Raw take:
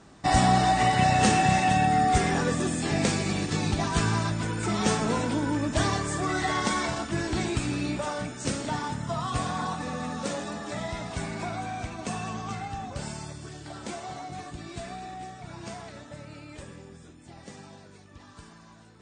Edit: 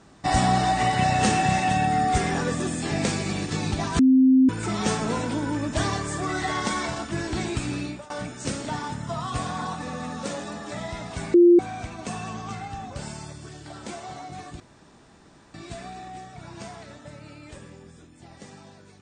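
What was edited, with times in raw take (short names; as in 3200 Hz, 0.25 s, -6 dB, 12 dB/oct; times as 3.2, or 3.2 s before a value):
3.99–4.49 bleep 261 Hz -12.5 dBFS
7.78–8.1 fade out, to -21.5 dB
11.34–11.59 bleep 348 Hz -10 dBFS
14.6 insert room tone 0.94 s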